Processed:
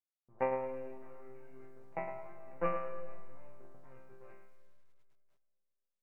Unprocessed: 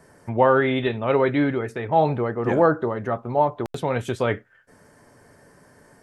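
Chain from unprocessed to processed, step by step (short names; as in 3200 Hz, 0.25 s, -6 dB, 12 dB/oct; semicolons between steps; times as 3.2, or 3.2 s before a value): low-pass opened by the level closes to 360 Hz, open at -15.5 dBFS; notch 1800 Hz, Q 7.8; low-pass opened by the level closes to 630 Hz, open at -14.5 dBFS; level quantiser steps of 15 dB; power-law curve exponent 2; brick-wall FIR low-pass 2900 Hz; resonator bank C3 sus4, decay 0.6 s; reverb RT60 2.2 s, pre-delay 0.115 s, DRR 13 dB; lo-fi delay 0.107 s, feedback 35%, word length 13-bit, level -10.5 dB; gain +7.5 dB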